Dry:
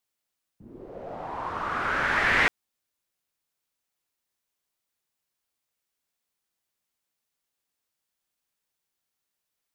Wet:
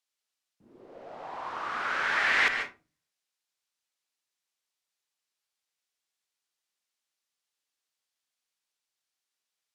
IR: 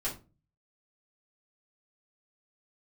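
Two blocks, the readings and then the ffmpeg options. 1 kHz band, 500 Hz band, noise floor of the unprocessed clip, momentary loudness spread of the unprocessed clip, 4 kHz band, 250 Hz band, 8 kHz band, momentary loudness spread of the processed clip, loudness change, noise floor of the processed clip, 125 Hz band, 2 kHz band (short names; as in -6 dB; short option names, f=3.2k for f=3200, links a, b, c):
-3.5 dB, -6.5 dB, -84 dBFS, 19 LU, 0.0 dB, -10.0 dB, -1.0 dB, 19 LU, -2.0 dB, under -85 dBFS, under -15 dB, -2.0 dB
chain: -filter_complex "[0:a]lowpass=4.8k,aemphasis=mode=production:type=riaa,asplit=2[a][b];[1:a]atrim=start_sample=2205,adelay=132[c];[b][c]afir=irnorm=-1:irlink=0,volume=-10dB[d];[a][d]amix=inputs=2:normalize=0,volume=-5dB"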